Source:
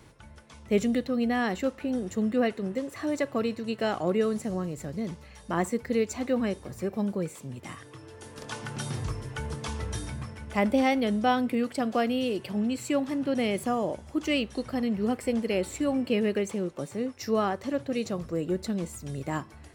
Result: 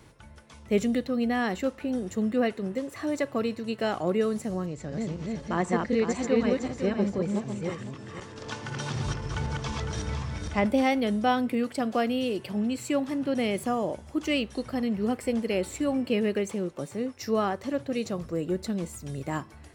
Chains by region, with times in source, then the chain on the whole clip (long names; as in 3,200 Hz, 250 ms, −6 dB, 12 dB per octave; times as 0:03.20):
0:04.66–0:10.66: feedback delay that plays each chunk backwards 253 ms, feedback 45%, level −1 dB + low-pass filter 7,100 Hz 24 dB per octave
whole clip: no processing